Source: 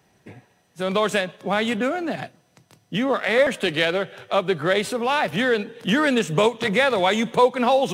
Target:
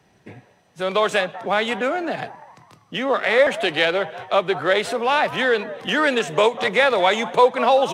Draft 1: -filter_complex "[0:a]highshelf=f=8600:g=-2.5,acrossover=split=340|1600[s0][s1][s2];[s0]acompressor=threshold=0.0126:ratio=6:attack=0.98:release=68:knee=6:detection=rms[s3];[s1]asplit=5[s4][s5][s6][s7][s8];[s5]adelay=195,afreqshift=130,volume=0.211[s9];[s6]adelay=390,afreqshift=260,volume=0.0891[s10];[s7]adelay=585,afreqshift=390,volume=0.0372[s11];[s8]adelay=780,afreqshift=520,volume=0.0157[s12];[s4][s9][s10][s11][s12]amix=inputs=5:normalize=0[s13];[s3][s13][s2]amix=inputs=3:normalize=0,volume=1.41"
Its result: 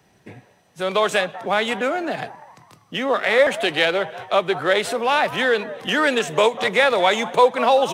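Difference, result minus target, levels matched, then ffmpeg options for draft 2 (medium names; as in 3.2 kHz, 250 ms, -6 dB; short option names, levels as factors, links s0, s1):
8 kHz band +3.0 dB
-filter_complex "[0:a]highshelf=f=8600:g=-10.5,acrossover=split=340|1600[s0][s1][s2];[s0]acompressor=threshold=0.0126:ratio=6:attack=0.98:release=68:knee=6:detection=rms[s3];[s1]asplit=5[s4][s5][s6][s7][s8];[s5]adelay=195,afreqshift=130,volume=0.211[s9];[s6]adelay=390,afreqshift=260,volume=0.0891[s10];[s7]adelay=585,afreqshift=390,volume=0.0372[s11];[s8]adelay=780,afreqshift=520,volume=0.0157[s12];[s4][s9][s10][s11][s12]amix=inputs=5:normalize=0[s13];[s3][s13][s2]amix=inputs=3:normalize=0,volume=1.41"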